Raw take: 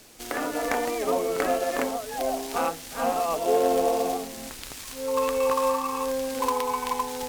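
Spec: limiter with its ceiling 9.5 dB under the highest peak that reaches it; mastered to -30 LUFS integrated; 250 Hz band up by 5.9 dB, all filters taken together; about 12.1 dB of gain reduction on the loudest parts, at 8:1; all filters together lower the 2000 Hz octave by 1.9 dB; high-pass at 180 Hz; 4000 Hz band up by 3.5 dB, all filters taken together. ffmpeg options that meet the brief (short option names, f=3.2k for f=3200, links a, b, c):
-af "highpass=180,equalizer=f=250:t=o:g=7.5,equalizer=f=2k:t=o:g=-4,equalizer=f=4k:t=o:g=5.5,acompressor=threshold=-29dB:ratio=8,volume=4dB,alimiter=limit=-19.5dB:level=0:latency=1"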